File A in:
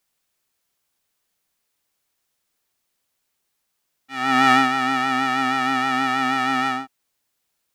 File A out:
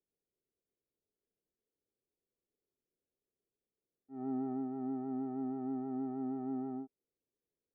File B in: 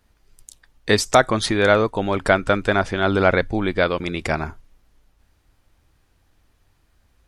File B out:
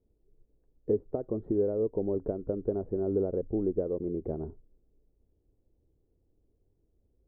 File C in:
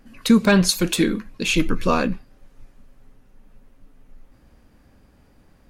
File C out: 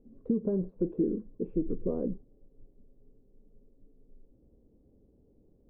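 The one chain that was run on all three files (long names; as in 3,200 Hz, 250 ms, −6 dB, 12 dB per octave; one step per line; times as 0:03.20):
downward compressor 5 to 1, threshold −18 dBFS
transistor ladder low-pass 490 Hz, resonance 55%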